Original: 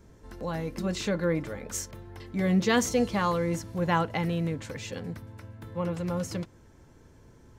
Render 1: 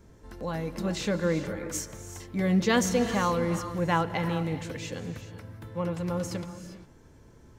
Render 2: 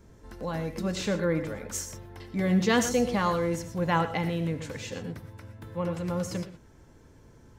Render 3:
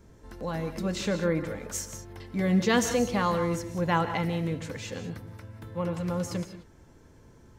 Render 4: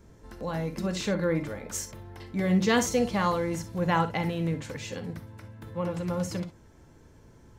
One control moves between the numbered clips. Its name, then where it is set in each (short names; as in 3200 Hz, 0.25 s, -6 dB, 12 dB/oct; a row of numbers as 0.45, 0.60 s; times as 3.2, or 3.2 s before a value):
non-linear reverb, gate: 430, 140, 210, 80 ms